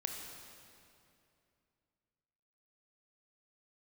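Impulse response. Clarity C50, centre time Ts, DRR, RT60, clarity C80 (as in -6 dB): 3.0 dB, 77 ms, 2.0 dB, 2.6 s, 4.0 dB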